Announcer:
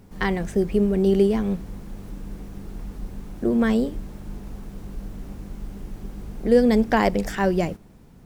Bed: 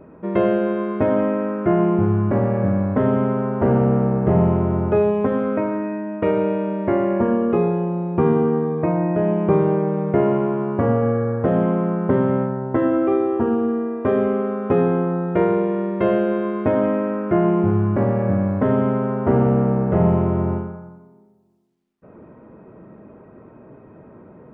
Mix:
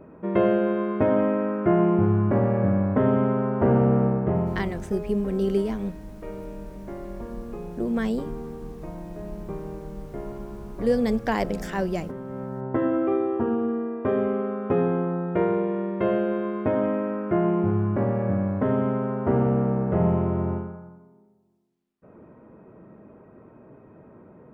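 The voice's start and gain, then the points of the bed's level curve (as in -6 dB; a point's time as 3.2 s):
4.35 s, -5.5 dB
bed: 4.06 s -2.5 dB
4.96 s -18.5 dB
12.24 s -18.5 dB
12.64 s -5 dB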